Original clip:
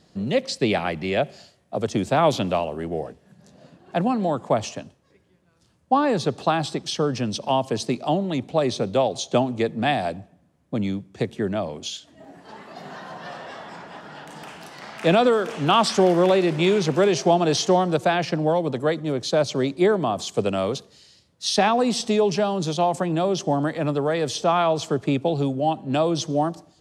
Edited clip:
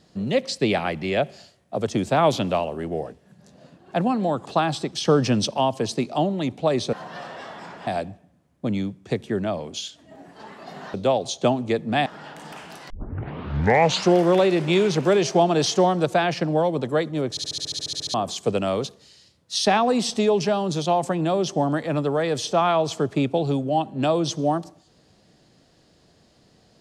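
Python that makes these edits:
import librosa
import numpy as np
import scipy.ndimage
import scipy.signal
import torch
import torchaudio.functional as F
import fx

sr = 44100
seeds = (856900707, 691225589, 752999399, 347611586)

y = fx.edit(x, sr, fx.cut(start_s=4.46, length_s=1.91),
    fx.clip_gain(start_s=6.96, length_s=0.46, db=5.0),
    fx.swap(start_s=8.84, length_s=1.12, other_s=13.03, other_length_s=0.94),
    fx.tape_start(start_s=14.81, length_s=1.29),
    fx.stutter_over(start_s=19.21, slice_s=0.07, count=12), tone=tone)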